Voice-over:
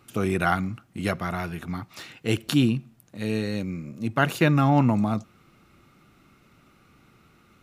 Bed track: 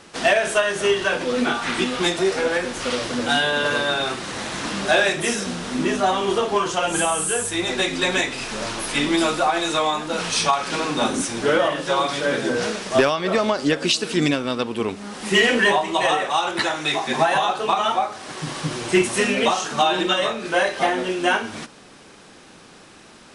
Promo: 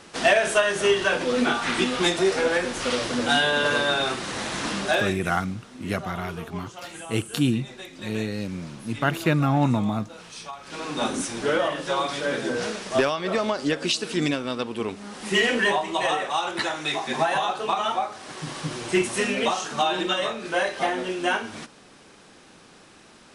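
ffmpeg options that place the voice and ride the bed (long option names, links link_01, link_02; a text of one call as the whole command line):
ffmpeg -i stem1.wav -i stem2.wav -filter_complex "[0:a]adelay=4850,volume=-1.5dB[link_01];[1:a]volume=13dB,afade=type=out:start_time=4.71:duration=0.54:silence=0.133352,afade=type=in:start_time=10.61:duration=0.43:silence=0.199526[link_02];[link_01][link_02]amix=inputs=2:normalize=0" out.wav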